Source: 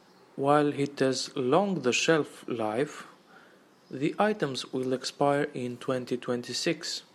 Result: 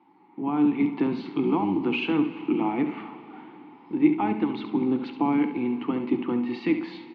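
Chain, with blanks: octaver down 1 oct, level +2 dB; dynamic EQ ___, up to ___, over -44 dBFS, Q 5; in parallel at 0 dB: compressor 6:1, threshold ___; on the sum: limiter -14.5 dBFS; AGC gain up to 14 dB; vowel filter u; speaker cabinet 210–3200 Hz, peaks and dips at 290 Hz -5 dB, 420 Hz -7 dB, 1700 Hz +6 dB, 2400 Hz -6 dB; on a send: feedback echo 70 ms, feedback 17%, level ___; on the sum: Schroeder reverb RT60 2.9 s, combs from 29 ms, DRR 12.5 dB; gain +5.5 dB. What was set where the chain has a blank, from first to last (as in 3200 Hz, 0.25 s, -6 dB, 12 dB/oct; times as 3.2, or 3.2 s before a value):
790 Hz, -5 dB, -36 dBFS, -10 dB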